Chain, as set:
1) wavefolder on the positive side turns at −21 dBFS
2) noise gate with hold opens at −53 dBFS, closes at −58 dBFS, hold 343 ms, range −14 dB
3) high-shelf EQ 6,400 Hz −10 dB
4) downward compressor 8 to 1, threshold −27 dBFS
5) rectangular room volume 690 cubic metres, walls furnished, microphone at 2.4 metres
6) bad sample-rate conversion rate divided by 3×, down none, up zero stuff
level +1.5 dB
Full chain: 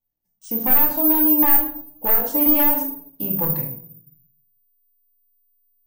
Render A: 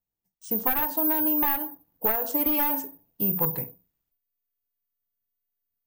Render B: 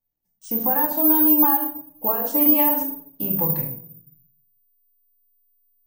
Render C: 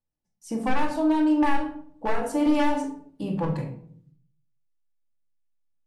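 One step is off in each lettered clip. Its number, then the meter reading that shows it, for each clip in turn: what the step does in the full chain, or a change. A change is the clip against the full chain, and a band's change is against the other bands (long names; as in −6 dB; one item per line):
5, change in momentary loudness spread −3 LU
1, distortion level −5 dB
6, 8 kHz band −4.0 dB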